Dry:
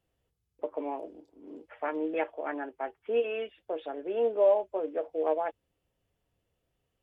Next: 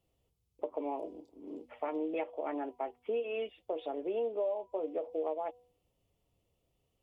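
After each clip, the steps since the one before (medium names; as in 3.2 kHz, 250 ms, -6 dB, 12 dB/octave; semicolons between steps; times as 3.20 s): peaking EQ 1.6 kHz -15 dB 0.43 oct; de-hum 245.2 Hz, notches 4; compression 6:1, threshold -33 dBFS, peak gain reduction 13 dB; trim +1.5 dB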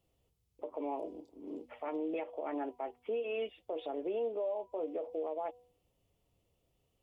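peak limiter -30 dBFS, peak gain reduction 8 dB; trim +1 dB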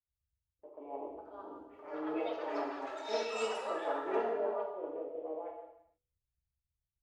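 ever faster or slower copies 737 ms, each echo +6 st, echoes 3; gated-style reverb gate 500 ms falling, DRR -3 dB; three bands expanded up and down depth 100%; trim -6.5 dB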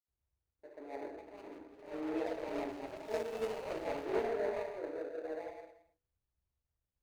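median filter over 41 samples; trim +1 dB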